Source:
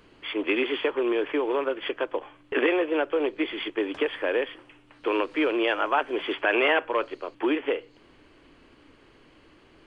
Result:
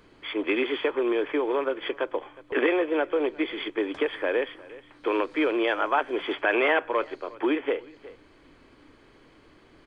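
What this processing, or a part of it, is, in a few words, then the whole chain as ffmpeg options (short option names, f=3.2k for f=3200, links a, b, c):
ducked delay: -filter_complex "[0:a]bandreject=f=2.8k:w=7.5,asplit=3[a][b][c];[b]adelay=362,volume=-8.5dB[d];[c]apad=whole_len=451122[e];[d][e]sidechaincompress=threshold=-40dB:ratio=8:attack=12:release=552[f];[a][f]amix=inputs=2:normalize=0"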